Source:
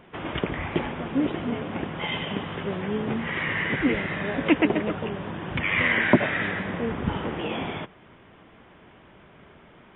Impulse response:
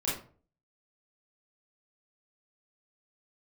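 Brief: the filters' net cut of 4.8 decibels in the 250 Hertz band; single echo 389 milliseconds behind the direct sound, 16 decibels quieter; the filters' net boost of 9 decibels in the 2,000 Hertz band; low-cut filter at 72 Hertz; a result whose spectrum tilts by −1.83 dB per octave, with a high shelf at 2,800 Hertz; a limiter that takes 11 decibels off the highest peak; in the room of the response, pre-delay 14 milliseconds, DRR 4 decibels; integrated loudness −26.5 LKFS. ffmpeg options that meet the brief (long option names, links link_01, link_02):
-filter_complex "[0:a]highpass=72,equalizer=frequency=250:width_type=o:gain=-6.5,equalizer=frequency=2000:width_type=o:gain=7,highshelf=frequency=2800:gain=8.5,alimiter=limit=-12dB:level=0:latency=1,aecho=1:1:389:0.158,asplit=2[link_01][link_02];[1:a]atrim=start_sample=2205,adelay=14[link_03];[link_02][link_03]afir=irnorm=-1:irlink=0,volume=-10.5dB[link_04];[link_01][link_04]amix=inputs=2:normalize=0,volume=-4.5dB"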